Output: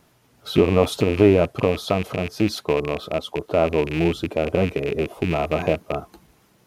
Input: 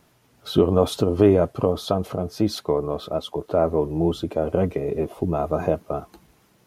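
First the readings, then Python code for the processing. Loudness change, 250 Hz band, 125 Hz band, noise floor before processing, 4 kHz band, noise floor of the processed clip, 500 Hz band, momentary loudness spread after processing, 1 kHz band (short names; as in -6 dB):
+1.0 dB, +1.0 dB, +1.0 dB, -61 dBFS, +2.5 dB, -60 dBFS, +1.0 dB, 10 LU, +1.0 dB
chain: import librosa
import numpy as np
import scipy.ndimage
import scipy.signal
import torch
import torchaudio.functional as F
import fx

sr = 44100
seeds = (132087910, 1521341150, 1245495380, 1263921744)

y = fx.rattle_buzz(x, sr, strikes_db=-30.0, level_db=-20.0)
y = y * 10.0 ** (1.0 / 20.0)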